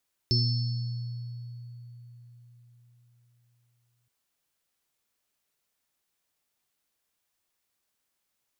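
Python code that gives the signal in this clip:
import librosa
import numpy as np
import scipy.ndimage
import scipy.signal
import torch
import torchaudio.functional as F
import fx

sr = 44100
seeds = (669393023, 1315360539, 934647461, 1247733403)

y = fx.additive_free(sr, length_s=3.77, hz=120.0, level_db=-22.0, upper_db=(-11.5, -10.0, -10.5, -2), decay_s=4.49, upper_decays_s=(1.45, 0.4, 2.29, 1.25), upper_hz=(241.0, 365.0, 4400.0, 5290.0))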